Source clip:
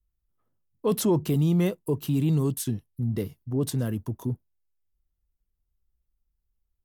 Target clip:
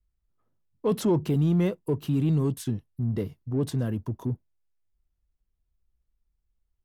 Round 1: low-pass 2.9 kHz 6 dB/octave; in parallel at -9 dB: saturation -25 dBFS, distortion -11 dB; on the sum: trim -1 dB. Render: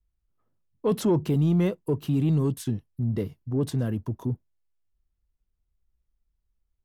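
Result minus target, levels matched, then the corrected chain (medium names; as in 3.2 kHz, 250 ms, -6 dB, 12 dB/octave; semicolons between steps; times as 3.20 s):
saturation: distortion -5 dB
low-pass 2.9 kHz 6 dB/octave; in parallel at -9 dB: saturation -33.5 dBFS, distortion -5 dB; on the sum: trim -1 dB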